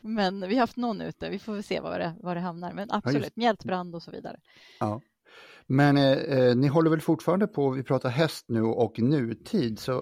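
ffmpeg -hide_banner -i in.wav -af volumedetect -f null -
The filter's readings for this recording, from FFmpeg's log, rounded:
mean_volume: -26.6 dB
max_volume: -10.5 dB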